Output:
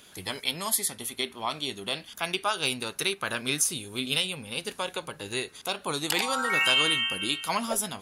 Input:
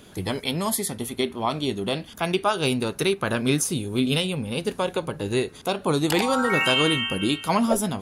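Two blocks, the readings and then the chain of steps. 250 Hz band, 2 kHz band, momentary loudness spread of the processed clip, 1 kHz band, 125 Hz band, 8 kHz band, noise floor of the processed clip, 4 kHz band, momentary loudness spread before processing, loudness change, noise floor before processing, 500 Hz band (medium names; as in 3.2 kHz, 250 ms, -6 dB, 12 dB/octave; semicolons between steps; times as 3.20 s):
-12.5 dB, -1.0 dB, 10 LU, -5.0 dB, -13.5 dB, +1.0 dB, -52 dBFS, 0.0 dB, 8 LU, -3.5 dB, -46 dBFS, -10.0 dB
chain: tilt shelf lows -7.5 dB, about 810 Hz; trim -6.5 dB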